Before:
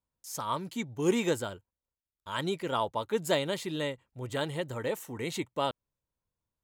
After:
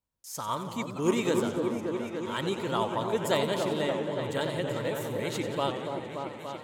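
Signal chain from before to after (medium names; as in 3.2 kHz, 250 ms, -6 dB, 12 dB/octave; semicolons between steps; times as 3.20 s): delay with an opening low-pass 288 ms, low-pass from 750 Hz, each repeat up 1 oct, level -3 dB; modulated delay 89 ms, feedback 67%, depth 155 cents, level -11 dB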